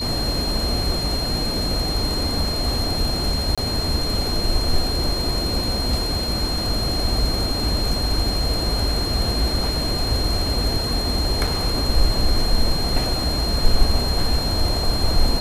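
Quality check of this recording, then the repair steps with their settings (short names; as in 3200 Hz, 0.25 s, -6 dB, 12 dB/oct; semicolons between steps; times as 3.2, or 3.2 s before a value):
tone 4200 Hz -25 dBFS
3.55–3.58 gap 26 ms
11.47–11.48 gap 5.1 ms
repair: notch 4200 Hz, Q 30; interpolate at 3.55, 26 ms; interpolate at 11.47, 5.1 ms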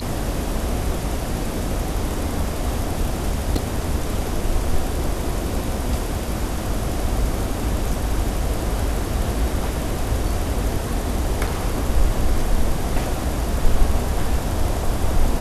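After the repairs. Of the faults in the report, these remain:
none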